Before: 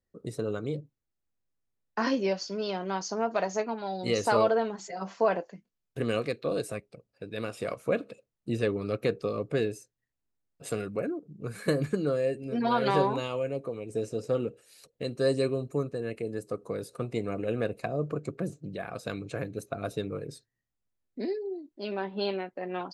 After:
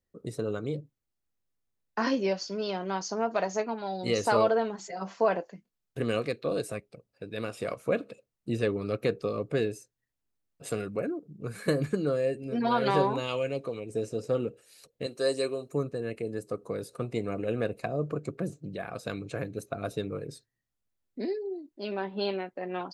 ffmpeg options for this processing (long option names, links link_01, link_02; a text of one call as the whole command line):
ffmpeg -i in.wav -filter_complex "[0:a]asplit=3[link_01][link_02][link_03];[link_01]afade=type=out:start_time=13.27:duration=0.02[link_04];[link_02]equalizer=frequency=3900:width_type=o:width=2:gain=10,afade=type=in:start_time=13.27:duration=0.02,afade=type=out:start_time=13.79:duration=0.02[link_05];[link_03]afade=type=in:start_time=13.79:duration=0.02[link_06];[link_04][link_05][link_06]amix=inputs=3:normalize=0,asettb=1/sr,asplit=3[link_07][link_08][link_09];[link_07]atrim=end=15.064[link_10];[link_08]atrim=start=15.06:end=15.72,asetpts=PTS-STARTPTS,afade=type=in:duration=0.004:curve=qsin,afade=type=out:start_time=0.656:duration=0.004:curve=qsin,bass=frequency=250:gain=-15,treble=frequency=4000:gain=5[link_11];[link_09]atrim=start=15.716[link_12];[link_10][link_11]acrossfade=duration=0.004:curve1=hsin:curve2=qsin[link_13];[link_13][link_12]acrossfade=duration=0.004:curve1=qsin:curve2=hsin" out.wav